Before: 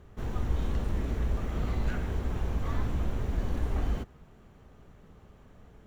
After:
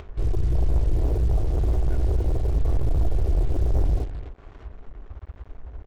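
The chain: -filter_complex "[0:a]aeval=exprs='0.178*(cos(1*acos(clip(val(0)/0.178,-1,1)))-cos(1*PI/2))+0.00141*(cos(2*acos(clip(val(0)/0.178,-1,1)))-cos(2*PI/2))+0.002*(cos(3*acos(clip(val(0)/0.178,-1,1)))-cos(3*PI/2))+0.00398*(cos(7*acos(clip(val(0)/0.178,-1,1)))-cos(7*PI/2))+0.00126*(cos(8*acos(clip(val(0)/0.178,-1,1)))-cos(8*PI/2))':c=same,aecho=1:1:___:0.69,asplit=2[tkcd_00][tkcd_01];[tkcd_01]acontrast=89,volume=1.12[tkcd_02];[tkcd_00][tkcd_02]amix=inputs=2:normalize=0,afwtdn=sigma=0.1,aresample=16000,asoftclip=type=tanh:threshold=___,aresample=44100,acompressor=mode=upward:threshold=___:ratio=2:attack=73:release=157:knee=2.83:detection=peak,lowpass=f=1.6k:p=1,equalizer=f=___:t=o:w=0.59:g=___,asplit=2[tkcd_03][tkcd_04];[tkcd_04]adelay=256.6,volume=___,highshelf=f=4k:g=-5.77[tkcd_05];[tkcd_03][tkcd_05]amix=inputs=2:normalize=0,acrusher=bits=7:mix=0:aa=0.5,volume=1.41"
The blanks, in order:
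2.8, 0.106, 0.0178, 220, -13.5, 0.251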